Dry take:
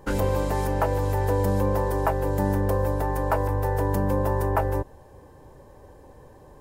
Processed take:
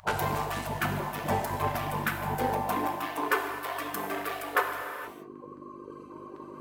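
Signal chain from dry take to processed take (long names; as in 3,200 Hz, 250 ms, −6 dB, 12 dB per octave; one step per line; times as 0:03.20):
adaptive Wiener filter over 25 samples
noise gate with hold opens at −41 dBFS
in parallel at −8 dB: soft clipping −23 dBFS, distortion −12 dB
on the sum: hum with harmonics 50 Hz, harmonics 20, −40 dBFS −3 dB per octave
high-pass filter sweep 250 Hz → 730 Hz, 0:02.34–0:03.63
gate on every frequency bin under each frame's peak −15 dB weak
reverb reduction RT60 1.6 s
reverb whose tail is shaped and stops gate 490 ms falling, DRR 3.5 dB
reversed playback
upward compression, threshold −37 dBFS
reversed playback
level +6 dB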